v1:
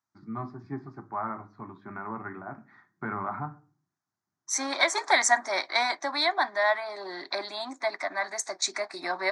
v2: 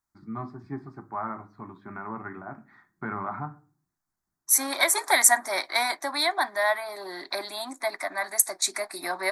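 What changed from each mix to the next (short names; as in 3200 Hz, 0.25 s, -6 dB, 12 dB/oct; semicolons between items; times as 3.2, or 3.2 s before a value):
master: remove elliptic band-pass 100–6300 Hz, stop band 40 dB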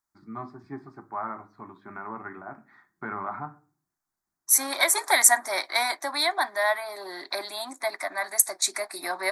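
master: add tone controls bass -7 dB, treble +1 dB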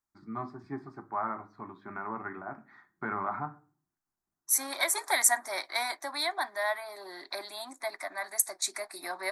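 second voice -6.5 dB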